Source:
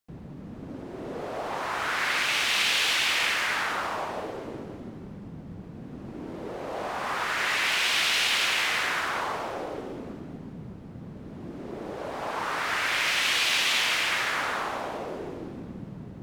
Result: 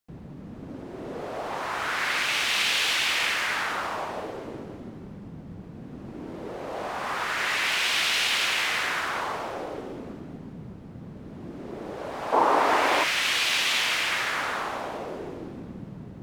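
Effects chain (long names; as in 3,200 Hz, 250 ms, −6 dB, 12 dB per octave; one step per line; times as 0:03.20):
0:12.32–0:13.04: flat-topped bell 510 Hz +13.5 dB 2.4 octaves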